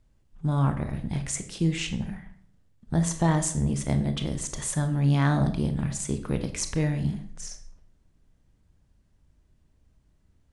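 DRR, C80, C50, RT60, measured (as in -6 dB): 7.5 dB, 15.0 dB, 11.0 dB, 0.55 s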